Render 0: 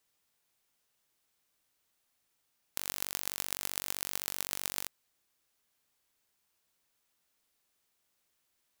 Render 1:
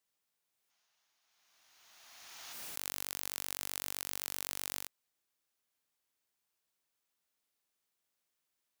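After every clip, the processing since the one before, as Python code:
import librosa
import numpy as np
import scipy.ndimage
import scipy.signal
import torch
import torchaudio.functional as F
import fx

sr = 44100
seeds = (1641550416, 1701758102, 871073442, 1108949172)

y = fx.low_shelf(x, sr, hz=110.0, db=-6.5)
y = fx.spec_box(y, sr, start_s=0.7, length_s=1.83, low_hz=620.0, high_hz=7000.0, gain_db=10)
y = fx.pre_swell(y, sr, db_per_s=24.0)
y = F.gain(torch.from_numpy(y), -7.0).numpy()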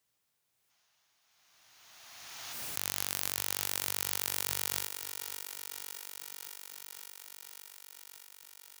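y = fx.peak_eq(x, sr, hz=110.0, db=9.5, octaves=0.85)
y = fx.echo_thinned(y, sr, ms=563, feedback_pct=78, hz=210.0, wet_db=-9)
y = F.gain(torch.from_numpy(y), 5.0).numpy()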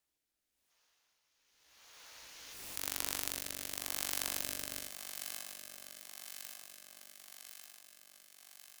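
y = fx.rotary(x, sr, hz=0.9)
y = y * np.sin(2.0 * np.pi * 180.0 * np.arange(len(y)) / sr)
y = fx.room_early_taps(y, sr, ms=(18, 69), db=(-9.0, -10.0))
y = F.gain(torch.from_numpy(y), 1.0).numpy()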